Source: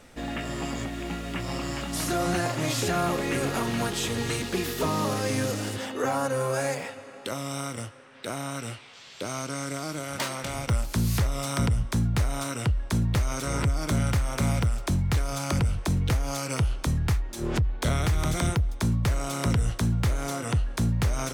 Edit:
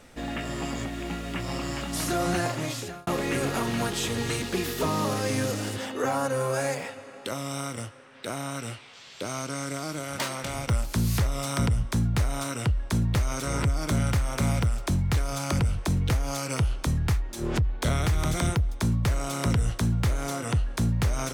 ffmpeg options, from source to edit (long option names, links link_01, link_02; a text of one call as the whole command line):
ffmpeg -i in.wav -filter_complex "[0:a]asplit=2[link_01][link_02];[link_01]atrim=end=3.07,asetpts=PTS-STARTPTS,afade=type=out:start_time=2.46:duration=0.61[link_03];[link_02]atrim=start=3.07,asetpts=PTS-STARTPTS,afade=type=in:duration=0.004:curve=hsin[link_04];[link_03][link_04]concat=n=2:v=0:a=1" out.wav